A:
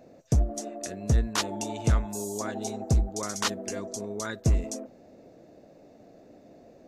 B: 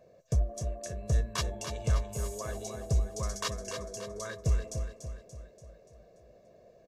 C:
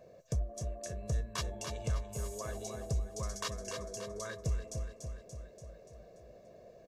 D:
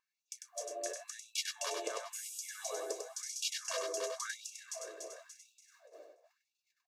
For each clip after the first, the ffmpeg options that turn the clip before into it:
-af "aecho=1:1:1.8:0.8,aecho=1:1:289|578|867|1156|1445|1734:0.398|0.203|0.104|0.0528|0.0269|0.0137,volume=-8.5dB"
-af "acompressor=threshold=-49dB:ratio=1.5,volume=2.5dB"
-filter_complex "[0:a]agate=range=-20dB:threshold=-52dB:ratio=16:detection=peak,asplit=2[a][b];[b]aecho=0:1:98:0.562[c];[a][c]amix=inputs=2:normalize=0,afftfilt=real='re*gte(b*sr/1024,260*pow(2400/260,0.5+0.5*sin(2*PI*0.95*pts/sr)))':imag='im*gte(b*sr/1024,260*pow(2400/260,0.5+0.5*sin(2*PI*0.95*pts/sr)))':win_size=1024:overlap=0.75,volume=4dB"

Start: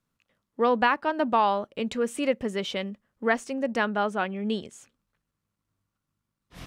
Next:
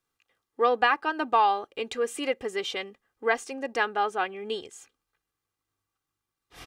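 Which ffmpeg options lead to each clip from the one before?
-af "lowshelf=f=280:g=-11.5,aecho=1:1:2.5:0.65"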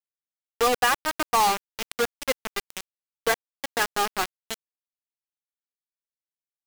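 -af "acrusher=bits=3:mix=0:aa=0.000001"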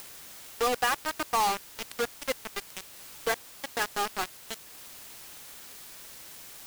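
-af "aeval=exprs='val(0)+0.5*0.0282*sgn(val(0))':c=same,acompressor=mode=upward:threshold=-34dB:ratio=2.5,volume=-6dB"

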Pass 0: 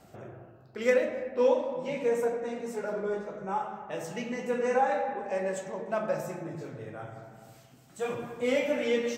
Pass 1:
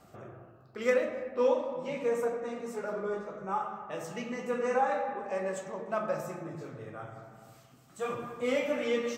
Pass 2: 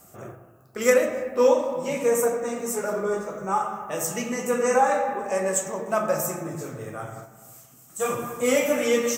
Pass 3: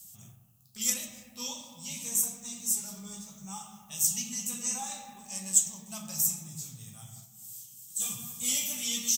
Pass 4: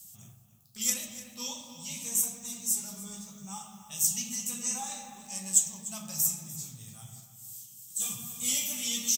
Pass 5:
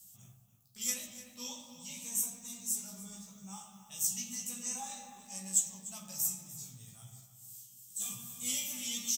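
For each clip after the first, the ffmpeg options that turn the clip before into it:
-af "equalizer=f=1.2k:w=7.4:g=11,volume=-2.5dB"
-af "agate=range=-6dB:threshold=-47dB:ratio=16:detection=peak,aexciter=amount=4.8:drive=7.2:freq=6k,volume=8dB"
-af "firequalizer=gain_entry='entry(210,0);entry(310,-22);entry(520,-27);entry(790,-12);entry(1500,-19);entry(3300,12)':delay=0.05:min_phase=1,volume=-8dB"
-filter_complex "[0:a]asplit=2[a][b];[b]adelay=297.4,volume=-12dB,highshelf=f=4k:g=-6.69[c];[a][c]amix=inputs=2:normalize=0"
-filter_complex "[0:a]asplit=2[a][b];[b]adelay=16,volume=-5dB[c];[a][c]amix=inputs=2:normalize=0,volume=-7dB"

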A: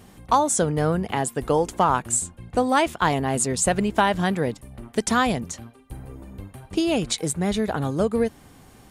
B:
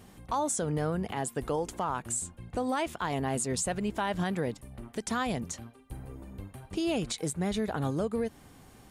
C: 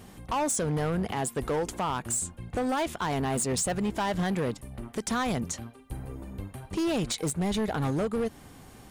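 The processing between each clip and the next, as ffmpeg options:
-af "alimiter=limit=-17dB:level=0:latency=1:release=125,volume=-4.5dB"
-af "volume=28.5dB,asoftclip=hard,volume=-28.5dB,volume=4.5dB"

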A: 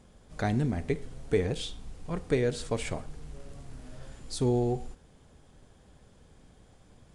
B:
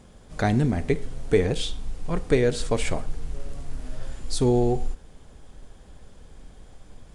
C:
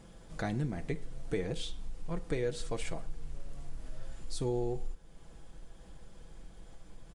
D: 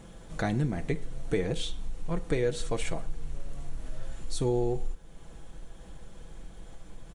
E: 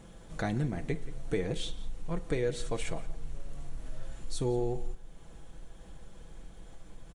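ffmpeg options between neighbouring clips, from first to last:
-af "asubboost=boost=3.5:cutoff=50,volume=6.5dB"
-af "aecho=1:1:6:0.45,acompressor=threshold=-42dB:ratio=1.5,volume=-4dB"
-af "bandreject=f=4.9k:w=9.5,volume=5.5dB"
-filter_complex "[0:a]asplit=2[a][b];[b]adelay=174.9,volume=-17dB,highshelf=f=4k:g=-3.94[c];[a][c]amix=inputs=2:normalize=0,volume=-3dB"

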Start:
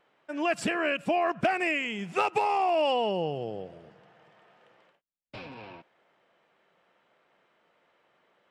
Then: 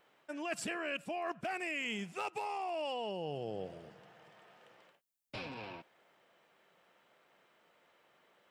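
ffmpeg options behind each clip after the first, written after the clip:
-af "areverse,acompressor=threshold=-34dB:ratio=12,areverse,highshelf=f=5.7k:g=11.5,volume=-1.5dB"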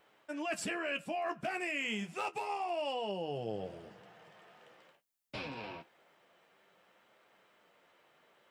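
-af "flanger=delay=9.3:depth=4.8:regen=-40:speed=0.28:shape=sinusoidal,volume=5.5dB"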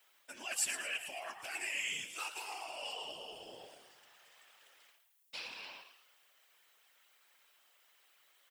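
-filter_complex "[0:a]aderivative,asplit=6[a][b][c][d][e][f];[b]adelay=111,afreqshift=110,volume=-9.5dB[g];[c]adelay=222,afreqshift=220,volume=-16.8dB[h];[d]adelay=333,afreqshift=330,volume=-24.2dB[i];[e]adelay=444,afreqshift=440,volume=-31.5dB[j];[f]adelay=555,afreqshift=550,volume=-38.8dB[k];[a][g][h][i][j][k]amix=inputs=6:normalize=0,afftfilt=real='hypot(re,im)*cos(2*PI*random(0))':imag='hypot(re,im)*sin(2*PI*random(1))':win_size=512:overlap=0.75,volume=14.5dB"

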